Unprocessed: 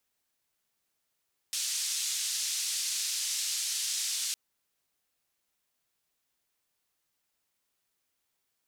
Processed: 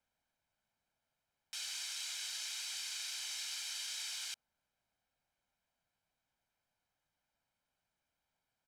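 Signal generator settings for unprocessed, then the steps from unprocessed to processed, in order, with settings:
noise band 4.2–7.3 kHz, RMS -32.5 dBFS 2.81 s
low-pass 1.5 kHz 6 dB/octave; comb 1.3 ms, depth 58%

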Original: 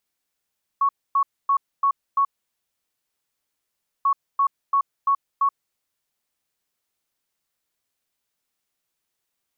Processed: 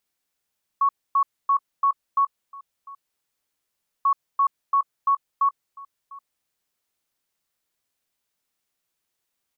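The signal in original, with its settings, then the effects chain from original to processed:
beep pattern sine 1.11 kHz, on 0.08 s, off 0.26 s, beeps 5, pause 1.80 s, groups 2, -15.5 dBFS
echo from a far wall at 120 m, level -20 dB

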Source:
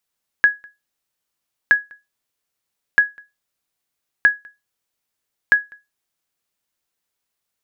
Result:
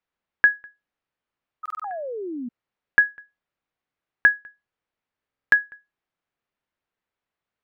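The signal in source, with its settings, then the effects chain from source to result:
sonar ping 1.67 kHz, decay 0.21 s, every 1.27 s, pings 5, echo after 0.20 s, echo -29.5 dB -4 dBFS
low-pass 2.3 kHz 12 dB/octave; painted sound fall, 1.63–2.49 s, 230–1300 Hz -31 dBFS; buffer glitch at 1.61/5.29 s, samples 2048, times 4

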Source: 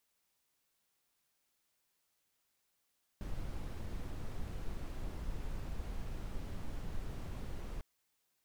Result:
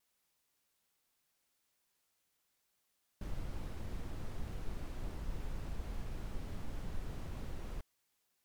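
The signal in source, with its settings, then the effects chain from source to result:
noise brown, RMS -39.5 dBFS 4.60 s
vibrato 3.4 Hz 80 cents

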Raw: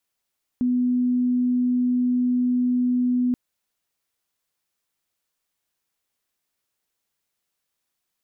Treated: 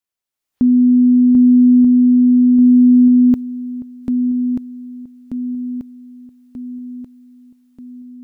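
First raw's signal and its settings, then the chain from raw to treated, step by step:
tone sine 248 Hz -18 dBFS 2.73 s
spectral noise reduction 8 dB; level rider gain up to 11 dB; on a send: shuffle delay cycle 1235 ms, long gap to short 1.5:1, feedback 49%, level -5 dB

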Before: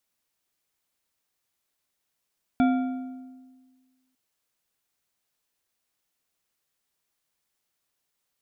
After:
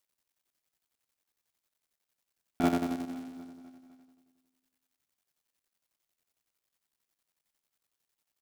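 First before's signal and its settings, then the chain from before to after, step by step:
metal hit bar, lowest mode 258 Hz, decay 1.59 s, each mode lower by 7 dB, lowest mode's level -16.5 dB
cycle switcher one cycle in 3, muted; square tremolo 11 Hz, depth 60%, duty 55%; feedback delay 252 ms, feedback 52%, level -15 dB

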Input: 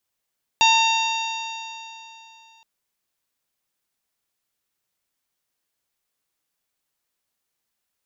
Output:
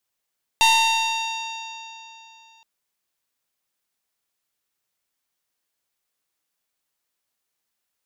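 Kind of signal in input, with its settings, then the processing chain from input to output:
stretched partials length 2.02 s, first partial 897 Hz, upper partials -18/-2/-3.5/-11/-13.5/-13 dB, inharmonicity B 0.0033, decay 3.05 s, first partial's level -15 dB
tracing distortion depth 0.039 ms; bass shelf 280 Hz -4 dB

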